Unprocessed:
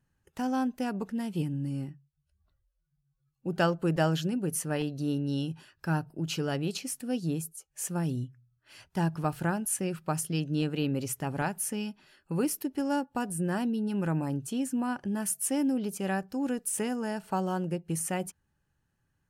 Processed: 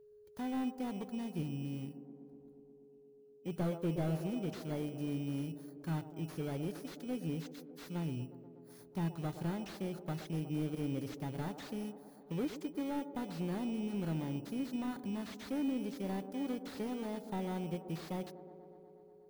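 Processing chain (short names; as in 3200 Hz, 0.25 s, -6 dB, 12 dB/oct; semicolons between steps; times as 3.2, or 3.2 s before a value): FFT order left unsorted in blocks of 16 samples; whine 420 Hz -50 dBFS; on a send: band-limited delay 0.121 s, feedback 79%, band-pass 430 Hz, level -11.5 dB; on the sum: slew limiter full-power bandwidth 32 Hz; gain -7.5 dB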